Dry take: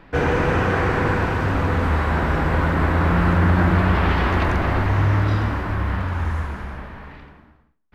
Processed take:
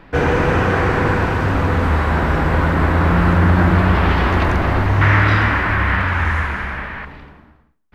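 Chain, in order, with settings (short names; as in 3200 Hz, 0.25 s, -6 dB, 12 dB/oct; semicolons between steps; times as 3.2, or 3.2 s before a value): 5.01–7.05 bell 2000 Hz +12.5 dB 1.6 oct; gain +3.5 dB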